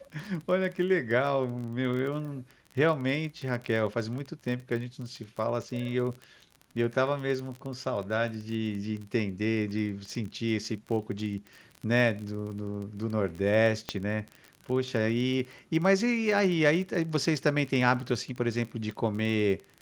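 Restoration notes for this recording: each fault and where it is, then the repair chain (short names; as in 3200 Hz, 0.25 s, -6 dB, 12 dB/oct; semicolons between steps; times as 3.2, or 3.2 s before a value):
crackle 30/s -34 dBFS
13.89 pop -15 dBFS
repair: de-click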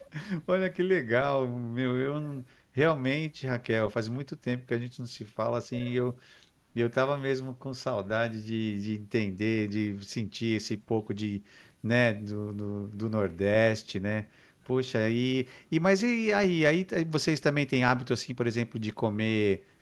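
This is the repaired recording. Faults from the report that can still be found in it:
none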